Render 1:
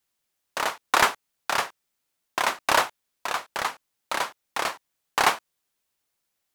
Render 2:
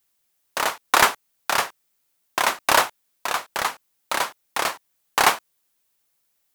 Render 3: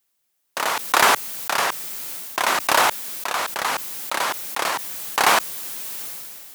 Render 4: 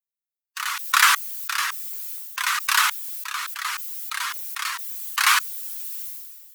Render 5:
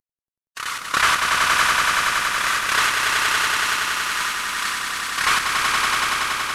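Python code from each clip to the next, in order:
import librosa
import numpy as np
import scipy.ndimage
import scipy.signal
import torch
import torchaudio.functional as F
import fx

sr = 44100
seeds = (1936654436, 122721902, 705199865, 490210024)

y1 = fx.high_shelf(x, sr, hz=9700.0, db=8.0)
y1 = y1 * librosa.db_to_amplitude(3.0)
y2 = scipy.signal.sosfilt(scipy.signal.butter(2, 110.0, 'highpass', fs=sr, output='sos'), y1)
y2 = fx.sustainer(y2, sr, db_per_s=23.0)
y2 = y2 * librosa.db_to_amplitude(-1.0)
y3 = fx.bin_expand(y2, sr, power=1.5)
y3 = scipy.signal.sosfilt(scipy.signal.butter(8, 1100.0, 'highpass', fs=sr, output='sos'), y3)
y3 = y3 * librosa.db_to_amplitude(3.0)
y4 = fx.cvsd(y3, sr, bps=64000)
y4 = fx.echo_swell(y4, sr, ms=94, loudest=5, wet_db=-4.0)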